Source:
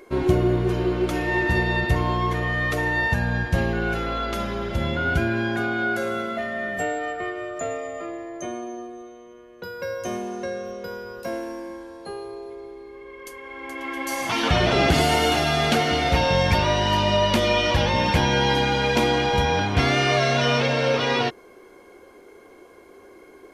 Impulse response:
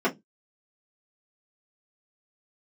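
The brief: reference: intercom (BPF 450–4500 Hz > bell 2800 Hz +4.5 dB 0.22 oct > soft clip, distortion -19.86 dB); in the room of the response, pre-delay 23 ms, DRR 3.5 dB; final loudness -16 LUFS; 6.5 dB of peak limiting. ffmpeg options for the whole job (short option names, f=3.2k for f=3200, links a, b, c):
-filter_complex "[0:a]alimiter=limit=-12dB:level=0:latency=1,asplit=2[a][b];[1:a]atrim=start_sample=2205,adelay=23[c];[b][c]afir=irnorm=-1:irlink=0,volume=-17.5dB[d];[a][d]amix=inputs=2:normalize=0,highpass=450,lowpass=4.5k,equalizer=f=2.8k:t=o:w=0.22:g=4.5,asoftclip=threshold=-14.5dB,volume=8.5dB"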